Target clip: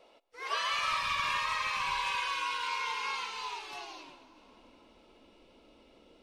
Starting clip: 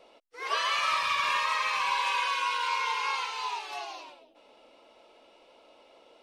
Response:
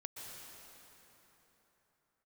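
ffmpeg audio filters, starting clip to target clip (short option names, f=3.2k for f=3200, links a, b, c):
-filter_complex "[0:a]asplit=2[a][b];[1:a]atrim=start_sample=2205,asetrate=37926,aresample=44100[c];[b][c]afir=irnorm=-1:irlink=0,volume=-12dB[d];[a][d]amix=inputs=2:normalize=0,asubboost=boost=10.5:cutoff=210,volume=-4.5dB"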